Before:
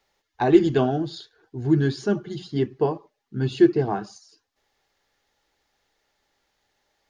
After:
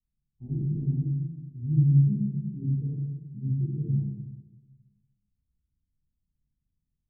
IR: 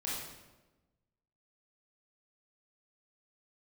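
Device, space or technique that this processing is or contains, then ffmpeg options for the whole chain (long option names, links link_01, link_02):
club heard from the street: -filter_complex "[0:a]alimiter=limit=-12dB:level=0:latency=1:release=151,lowpass=frequency=170:width=0.5412,lowpass=frequency=170:width=1.3066[link_01];[1:a]atrim=start_sample=2205[link_02];[link_01][link_02]afir=irnorm=-1:irlink=0"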